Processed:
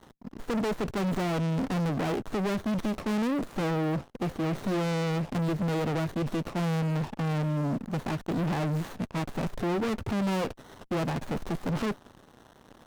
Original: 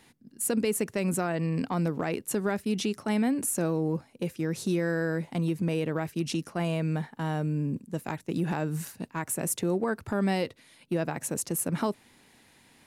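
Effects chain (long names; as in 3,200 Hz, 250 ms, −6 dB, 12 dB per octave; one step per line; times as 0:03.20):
parametric band 9,900 Hz −10.5 dB 0.45 octaves
leveller curve on the samples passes 5
windowed peak hold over 17 samples
level −7.5 dB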